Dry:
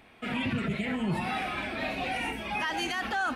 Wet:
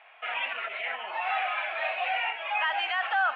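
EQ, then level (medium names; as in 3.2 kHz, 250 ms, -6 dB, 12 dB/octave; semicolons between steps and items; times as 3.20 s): elliptic band-pass 660–3000 Hz, stop band 60 dB; +4.5 dB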